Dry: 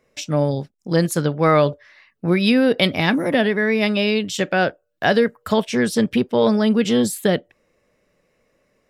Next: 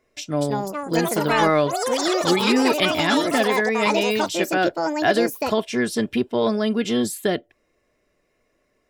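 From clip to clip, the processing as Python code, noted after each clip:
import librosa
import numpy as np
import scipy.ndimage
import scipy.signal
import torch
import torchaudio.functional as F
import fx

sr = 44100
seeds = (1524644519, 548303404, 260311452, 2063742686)

y = x + 0.44 * np.pad(x, (int(2.9 * sr / 1000.0), 0))[:len(x)]
y = fx.echo_pitch(y, sr, ms=291, semitones=6, count=3, db_per_echo=-3.0)
y = y * librosa.db_to_amplitude(-3.5)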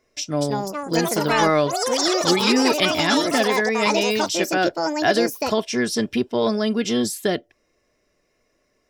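y = fx.peak_eq(x, sr, hz=5500.0, db=8.5, octaves=0.51)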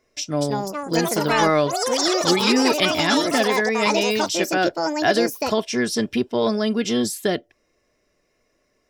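y = x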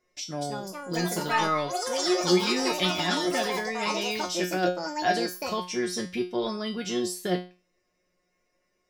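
y = fx.comb_fb(x, sr, f0_hz=180.0, decay_s=0.33, harmonics='all', damping=0.0, mix_pct=90)
y = y * librosa.db_to_amplitude(4.5)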